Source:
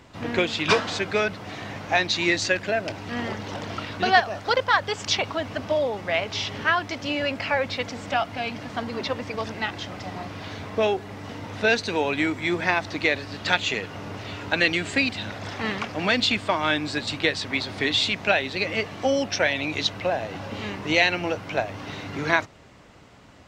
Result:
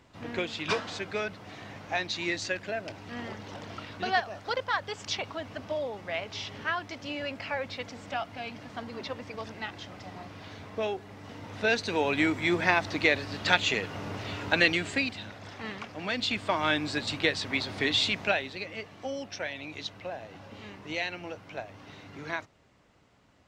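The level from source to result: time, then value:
0:11.17 −9 dB
0:12.24 −1.5 dB
0:14.61 −1.5 dB
0:15.35 −10.5 dB
0:16.06 −10.5 dB
0:16.59 −3.5 dB
0:18.19 −3.5 dB
0:18.69 −13 dB

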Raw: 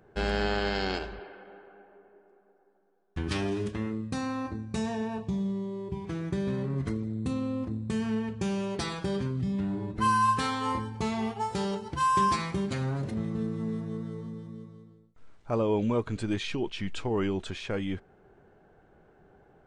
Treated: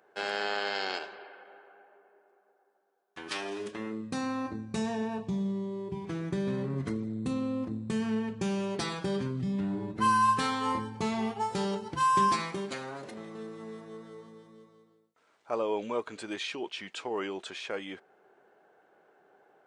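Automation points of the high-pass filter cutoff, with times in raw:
0:03.43 560 Hz
0:04.31 140 Hz
0:12.15 140 Hz
0:12.85 460 Hz

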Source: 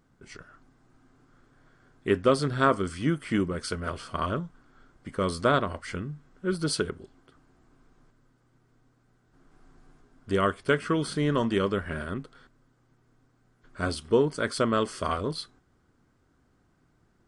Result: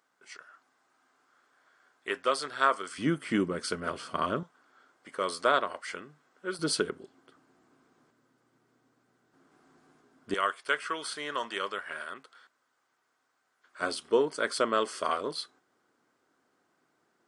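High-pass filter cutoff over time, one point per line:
740 Hz
from 0:02.98 200 Hz
from 0:04.43 520 Hz
from 0:06.59 240 Hz
from 0:10.34 840 Hz
from 0:13.81 400 Hz

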